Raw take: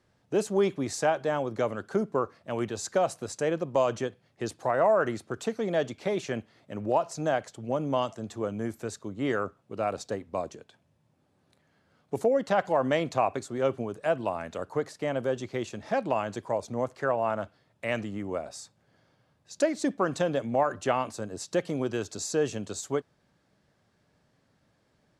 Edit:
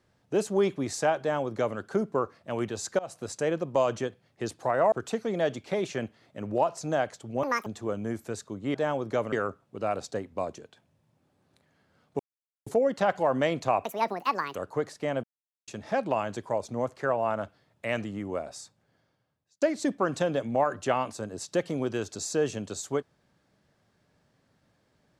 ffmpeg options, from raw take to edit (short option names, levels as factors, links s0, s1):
-filter_complex "[0:a]asplit=13[s0][s1][s2][s3][s4][s5][s6][s7][s8][s9][s10][s11][s12];[s0]atrim=end=2.99,asetpts=PTS-STARTPTS,afade=t=out:st=2.986:d=0.004:c=hsin:silence=0.0707946[s13];[s1]atrim=start=2.99:end=4.922,asetpts=PTS-STARTPTS,afade=t=in:d=0.27:silence=0.0707946[s14];[s2]atrim=start=5.258:end=7.774[s15];[s3]atrim=start=7.77:end=8.21,asetpts=PTS-STARTPTS,asetrate=82908,aresample=44100,atrim=end_sample=10321,asetpts=PTS-STARTPTS[s16];[s4]atrim=start=8.206:end=9.292[s17];[s5]atrim=start=1.198:end=1.782[s18];[s6]atrim=start=9.288:end=12.16,asetpts=PTS-STARTPTS,afade=t=out:st=2.868:d=0.004:c=hsin,apad=pad_dur=0.47[s19];[s7]atrim=start=12.16:end=13.344,asetpts=PTS-STARTPTS,afade=t=in:d=0.004:c=hsin[s20];[s8]atrim=start=13.34:end=14.55,asetpts=PTS-STARTPTS,asetrate=74970,aresample=44100[s21];[s9]atrim=start=14.546:end=15.23,asetpts=PTS-STARTPTS,afade=t=out:st=0.68:d=0.004:c=hsin[s22];[s10]atrim=start=15.23:end=15.67,asetpts=PTS-STARTPTS,volume=0[s23];[s11]atrim=start=15.67:end=19.61,asetpts=PTS-STARTPTS,afade=t=in:d=0.004:c=hsin,afade=t=out:st=2.85:d=1.09[s24];[s12]atrim=start=19.61,asetpts=PTS-STARTPTS,afade=t=in:d=0.004:c=hsin[s25];[s13][s14]concat=n=2:v=0:a=1[s26];[s26][s15]acrossfade=d=0.004:c1=hsin:c2=hsin[s27];[s27][s16]acrossfade=d=0.004:c1=hsin:c2=hsin[s28];[s28][s17]acrossfade=d=0.004:c1=hsin:c2=hsin[s29];[s29][s18]acrossfade=d=0.004:c1=hsin:c2=hsin[s30];[s19][s20]concat=n=2:v=0:a=1[s31];[s30][s31]acrossfade=d=0.004:c1=hsin:c2=hsin[s32];[s32][s21]acrossfade=d=0.004:c1=hsin:c2=hsin[s33];[s22][s23][s24][s25]concat=n=4:v=0:a=1[s34];[s33][s34]acrossfade=d=0.004:c1=hsin:c2=hsin"